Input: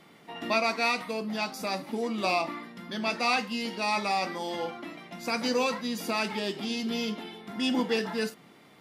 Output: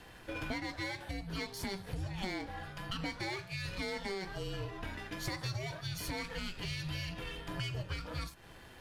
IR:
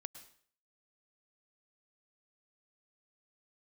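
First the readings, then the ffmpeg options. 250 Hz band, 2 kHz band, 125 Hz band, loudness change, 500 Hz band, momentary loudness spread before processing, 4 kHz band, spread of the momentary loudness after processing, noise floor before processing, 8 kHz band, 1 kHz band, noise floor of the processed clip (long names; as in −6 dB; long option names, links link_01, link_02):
−11.5 dB, −9.0 dB, +6.0 dB, −10.0 dB, −12.5 dB, 11 LU, −8.0 dB, 5 LU, −56 dBFS, −7.0 dB, −14.5 dB, −54 dBFS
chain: -af "aeval=exprs='if(lt(val(0),0),0.447*val(0),val(0))':channel_layout=same,highpass=frequency=250:width=0.5412,highpass=frequency=250:width=1.3066,acompressor=threshold=-41dB:ratio=10,afreqshift=-380,volume=5.5dB"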